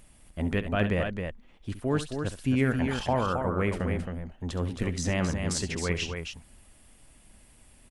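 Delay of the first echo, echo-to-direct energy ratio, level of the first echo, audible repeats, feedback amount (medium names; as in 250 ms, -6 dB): 68 ms, -5.0 dB, -12.5 dB, 2, no regular repeats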